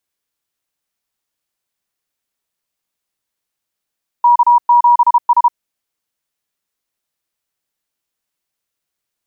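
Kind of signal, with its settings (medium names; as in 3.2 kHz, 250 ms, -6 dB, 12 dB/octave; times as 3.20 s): Morse "K7S" 32 wpm 960 Hz -5.5 dBFS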